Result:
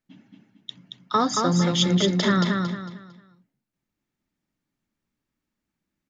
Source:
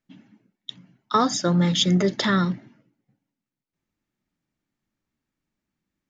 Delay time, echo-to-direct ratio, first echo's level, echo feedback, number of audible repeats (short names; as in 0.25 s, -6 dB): 0.226 s, -3.5 dB, -4.0 dB, 31%, 4